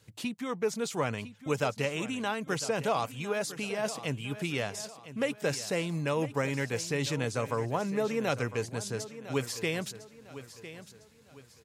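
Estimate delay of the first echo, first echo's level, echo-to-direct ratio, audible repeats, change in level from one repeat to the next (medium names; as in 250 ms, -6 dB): 1004 ms, -14.0 dB, -13.5 dB, 3, -8.5 dB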